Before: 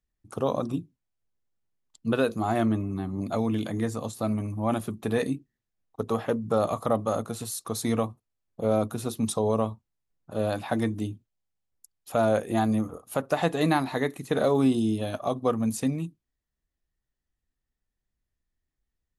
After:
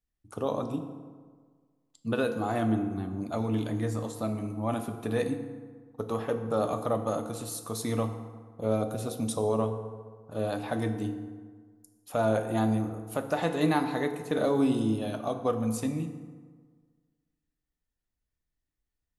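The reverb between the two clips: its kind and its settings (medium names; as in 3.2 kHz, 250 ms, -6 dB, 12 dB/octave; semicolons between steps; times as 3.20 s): FDN reverb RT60 1.6 s, low-frequency decay 1×, high-frequency decay 0.55×, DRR 6 dB; trim -4 dB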